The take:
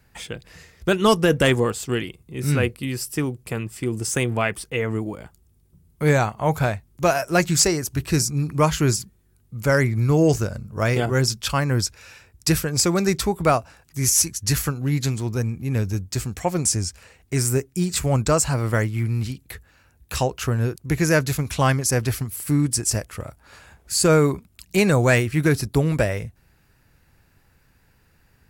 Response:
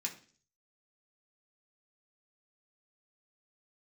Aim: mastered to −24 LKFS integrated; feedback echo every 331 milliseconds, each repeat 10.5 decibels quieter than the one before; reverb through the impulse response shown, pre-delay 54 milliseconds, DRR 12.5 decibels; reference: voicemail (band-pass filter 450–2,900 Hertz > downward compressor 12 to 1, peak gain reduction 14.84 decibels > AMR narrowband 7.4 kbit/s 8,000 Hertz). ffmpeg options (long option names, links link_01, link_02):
-filter_complex "[0:a]aecho=1:1:331|662|993:0.299|0.0896|0.0269,asplit=2[link_01][link_02];[1:a]atrim=start_sample=2205,adelay=54[link_03];[link_02][link_03]afir=irnorm=-1:irlink=0,volume=-13dB[link_04];[link_01][link_04]amix=inputs=2:normalize=0,highpass=450,lowpass=2900,acompressor=threshold=-28dB:ratio=12,volume=12dB" -ar 8000 -c:a libopencore_amrnb -b:a 7400